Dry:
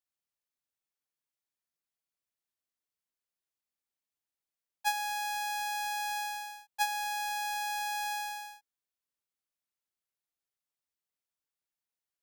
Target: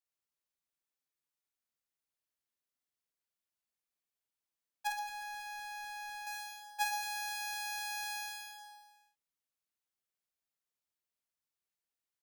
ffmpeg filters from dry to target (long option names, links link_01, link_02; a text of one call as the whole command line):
ffmpeg -i in.wav -filter_complex "[0:a]asettb=1/sr,asplit=3[link_01][link_02][link_03];[link_01]atrim=end=4.874[link_04];[link_02]atrim=start=4.87:end=6.27,asetpts=PTS-STARTPTS,afade=type=in:duration=0.004:curve=qsin,afade=type=out:start_time=1.396:duration=0.004:curve=qsin,highshelf=frequency=2300:gain=-11.5[link_05];[link_03]atrim=start=6.266[link_06];[link_04][link_05]acrossfade=duration=0.004:curve1=hsin:curve2=qsin[link_07];[link_07][link_06]acrossfade=duration=0.004:curve1=qsin:curve2=hsin,aecho=1:1:50|120|218|355.2|547.3:0.631|0.398|0.251|0.158|0.1,volume=-4dB" out.wav